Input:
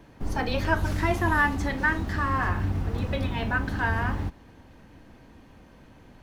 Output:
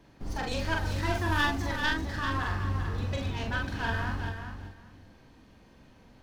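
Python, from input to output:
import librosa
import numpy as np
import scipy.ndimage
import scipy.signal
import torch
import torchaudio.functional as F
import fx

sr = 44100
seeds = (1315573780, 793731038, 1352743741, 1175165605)

y = fx.tracing_dist(x, sr, depth_ms=0.11)
y = fx.peak_eq(y, sr, hz=4700.0, db=5.5, octaves=1.1)
y = fx.doubler(y, sr, ms=44.0, db=-3.0)
y = fx.echo_feedback(y, sr, ms=392, feedback_pct=17, wet_db=-8.0)
y = F.gain(torch.from_numpy(y), -7.5).numpy()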